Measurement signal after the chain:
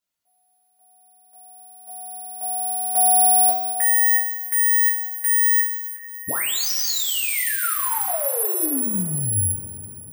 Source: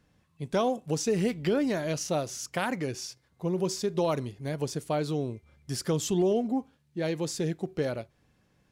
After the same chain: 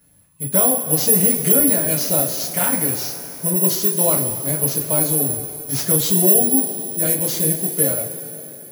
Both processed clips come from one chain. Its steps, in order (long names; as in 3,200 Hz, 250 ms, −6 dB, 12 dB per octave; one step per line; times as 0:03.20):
bad sample-rate conversion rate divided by 4×, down none, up zero stuff
coupled-rooms reverb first 0.26 s, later 3.8 s, from −18 dB, DRR −4 dB